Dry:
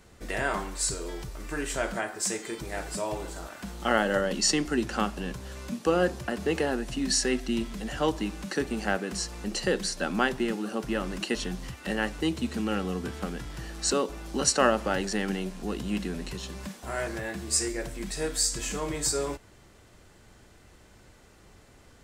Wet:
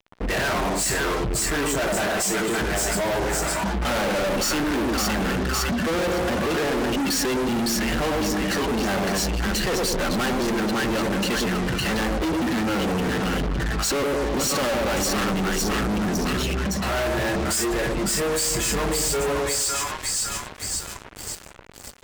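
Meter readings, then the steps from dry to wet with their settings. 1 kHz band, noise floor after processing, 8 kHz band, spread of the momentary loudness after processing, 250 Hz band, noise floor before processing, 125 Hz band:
+7.0 dB, −39 dBFS, +5.5 dB, 3 LU, +6.5 dB, −55 dBFS, +9.0 dB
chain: echo with a time of its own for lows and highs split 890 Hz, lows 104 ms, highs 559 ms, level −4 dB
gate on every frequency bin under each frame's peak −20 dB strong
fuzz pedal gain 45 dB, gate −48 dBFS
level −9 dB

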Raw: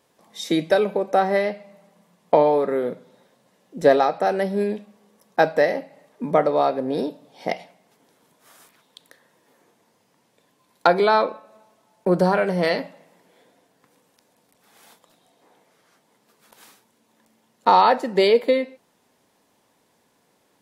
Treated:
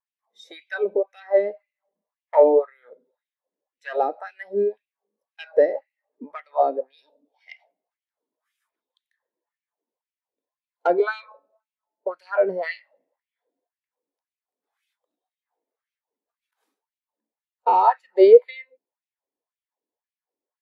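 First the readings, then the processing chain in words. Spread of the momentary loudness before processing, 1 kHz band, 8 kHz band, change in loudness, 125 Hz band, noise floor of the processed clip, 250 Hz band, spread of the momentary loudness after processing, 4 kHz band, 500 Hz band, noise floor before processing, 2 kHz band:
14 LU, −3.5 dB, can't be measured, 0.0 dB, below −20 dB, below −85 dBFS, −6.5 dB, 21 LU, below −10 dB, 0.0 dB, −65 dBFS, −6.0 dB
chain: gain into a clipping stage and back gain 9.5 dB
auto-filter high-pass sine 1.9 Hz 280–2,600 Hz
every bin expanded away from the loudest bin 1.5 to 1
level +1 dB

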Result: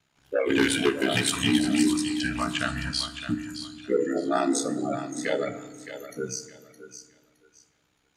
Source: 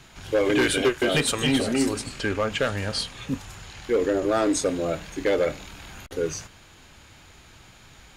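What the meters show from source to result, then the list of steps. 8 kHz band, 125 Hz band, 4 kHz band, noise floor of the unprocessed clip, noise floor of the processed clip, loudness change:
−0.5 dB, −3.0 dB, −0.5 dB, −51 dBFS, −70 dBFS, −1.5 dB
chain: high-pass filter 94 Hz
noise reduction from a noise print of the clip's start 24 dB
in parallel at 0 dB: downward compressor, threshold −35 dBFS, peak gain reduction 16.5 dB
on the sum: ring modulation 33 Hz
on a send: feedback echo with a high-pass in the loop 616 ms, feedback 25%, high-pass 520 Hz, level −10 dB
on the sum: feedback delay network reverb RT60 1.6 s, low-frequency decay 1.5×, high-frequency decay 0.5×, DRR 11 dB

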